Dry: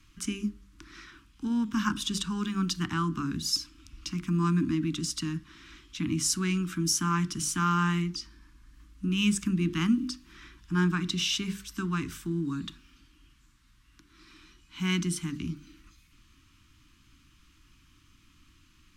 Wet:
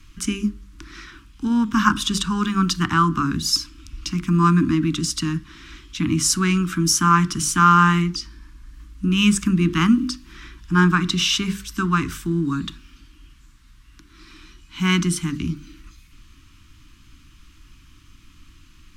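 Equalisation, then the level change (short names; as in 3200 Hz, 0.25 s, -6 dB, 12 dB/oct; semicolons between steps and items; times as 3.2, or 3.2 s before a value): low shelf 60 Hz +8 dB; dynamic EQ 1200 Hz, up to +7 dB, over -47 dBFS, Q 1.4; +8.0 dB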